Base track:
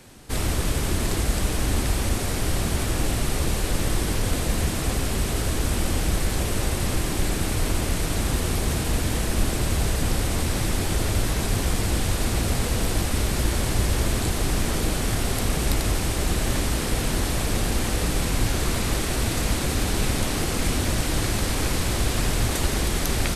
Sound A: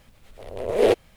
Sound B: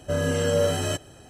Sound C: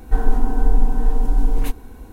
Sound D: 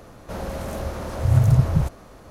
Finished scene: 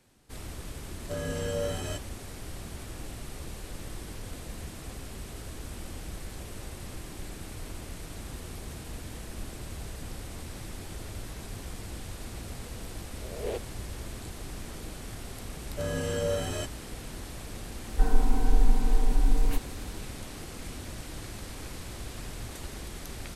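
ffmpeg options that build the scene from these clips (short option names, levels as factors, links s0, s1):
-filter_complex "[2:a]asplit=2[s0][s1];[0:a]volume=0.15[s2];[s0]atrim=end=1.29,asetpts=PTS-STARTPTS,volume=0.335,afade=t=in:d=0.004:c=hsin,afade=t=out:st=1.286:d=0.004:c=hsin,adelay=1010[s3];[1:a]atrim=end=1.16,asetpts=PTS-STARTPTS,volume=0.15,afade=t=in:d=0.004:c=hsin,afade=t=out:st=1.156:d=0.004:c=hsin,adelay=12640[s4];[s1]atrim=end=1.29,asetpts=PTS-STARTPTS,volume=0.422,afade=t=in:d=0.004:c=hsin,afade=t=out:st=1.286:d=0.004:c=hsin,adelay=15690[s5];[3:a]atrim=end=2.12,asetpts=PTS-STARTPTS,volume=0.501,afade=t=in:d=0.004:c=hsin,afade=t=out:st=2.116:d=0.004:c=hsin,adelay=17870[s6];[s2][s3][s4][s5][s6]amix=inputs=5:normalize=0"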